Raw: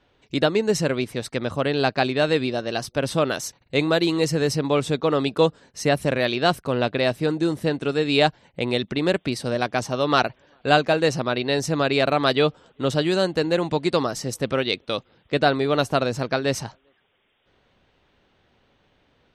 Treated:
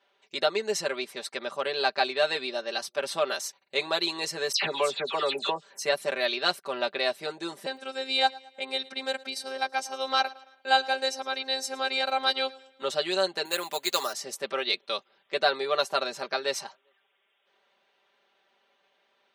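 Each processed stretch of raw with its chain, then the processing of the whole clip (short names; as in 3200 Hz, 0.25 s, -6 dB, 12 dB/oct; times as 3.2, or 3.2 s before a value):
4.52–5.82 dispersion lows, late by 0.103 s, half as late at 2900 Hz + three-band squash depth 100%
7.66–12.82 high shelf 5200 Hz +4 dB + robotiser 264 Hz + feedback echo 0.11 s, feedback 46%, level -21 dB
13.45–14.13 HPF 62 Hz + tilt +2 dB/oct + careless resampling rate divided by 4×, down none, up hold
whole clip: HPF 560 Hz 12 dB/oct; comb 5.1 ms, depth 83%; dynamic EQ 4100 Hz, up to +6 dB, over -42 dBFS, Q 7.5; gain -5.5 dB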